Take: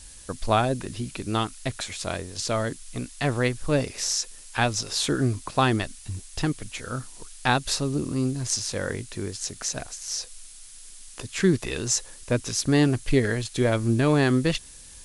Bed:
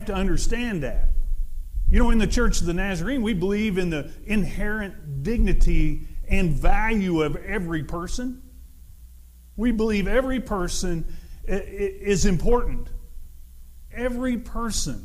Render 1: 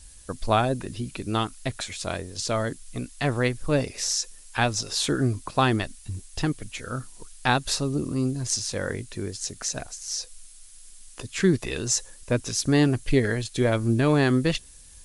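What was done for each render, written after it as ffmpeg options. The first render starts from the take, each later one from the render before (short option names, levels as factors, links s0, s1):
-af "afftdn=nr=6:nf=-46"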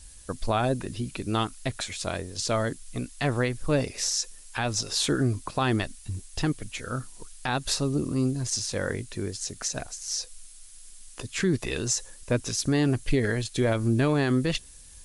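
-af "alimiter=limit=0.178:level=0:latency=1:release=70"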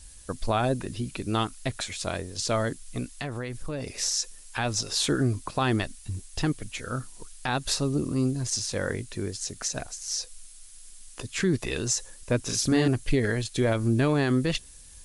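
-filter_complex "[0:a]asettb=1/sr,asplit=3[s0][s1][s2];[s0]atrim=end=3.044[s3];[s1]atrim=start=3.04:end=3.98,asetpts=PTS-STARTPTS,afade=t=in:d=0.004:c=qsin,afade=t=out:st=0.936:d=0.004:c=qsin,acompressor=threshold=0.0355:ratio=6:attack=3.2:release=140:knee=1:detection=peak[s4];[s2]atrim=start=3.976[s5];[s3][s4]acrossfade=d=0.004:c1=hsin:c2=qsin[s6];[s6][s5]acrossfade=d=0.004:c1=qsin:c2=hsin,asettb=1/sr,asplit=3[s7][s8][s9];[s7]atrim=end=12.404[s10];[s8]atrim=start=12.4:end=12.88,asetpts=PTS-STARTPTS,afade=t=in:d=0.004:c=qsin,afade=t=out:st=0.476:d=0.004:c=qsin,asplit=2[s11][s12];[s12]adelay=39,volume=0.708[s13];[s11][s13]amix=inputs=2:normalize=0,atrim=end_sample=21168[s14];[s9]atrim=start=12.876[s15];[s10][s14]acrossfade=d=0.004:c1=hsin:c2=qsin[s16];[s16][s15]acrossfade=d=0.004:c1=qsin:c2=hsin"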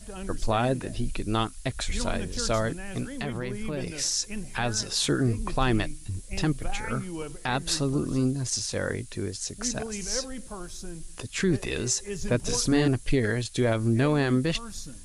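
-filter_complex "[1:a]volume=0.211[s0];[0:a][s0]amix=inputs=2:normalize=0"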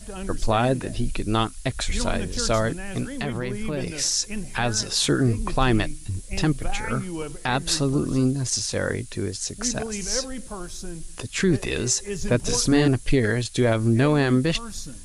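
-af "volume=1.58"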